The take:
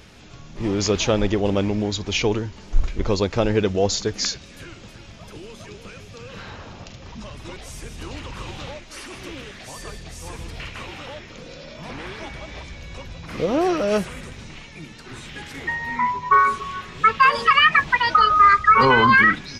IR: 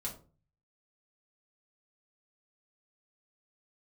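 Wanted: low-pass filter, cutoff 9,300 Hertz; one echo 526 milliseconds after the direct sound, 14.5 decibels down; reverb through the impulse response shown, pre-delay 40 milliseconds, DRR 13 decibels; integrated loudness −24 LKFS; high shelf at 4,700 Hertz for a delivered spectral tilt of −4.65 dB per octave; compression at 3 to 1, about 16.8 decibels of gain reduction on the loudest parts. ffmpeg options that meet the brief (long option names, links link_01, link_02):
-filter_complex "[0:a]lowpass=9300,highshelf=frequency=4700:gain=-5.5,acompressor=threshold=-33dB:ratio=3,aecho=1:1:526:0.188,asplit=2[link_01][link_02];[1:a]atrim=start_sample=2205,adelay=40[link_03];[link_02][link_03]afir=irnorm=-1:irlink=0,volume=-12.5dB[link_04];[link_01][link_04]amix=inputs=2:normalize=0,volume=10dB"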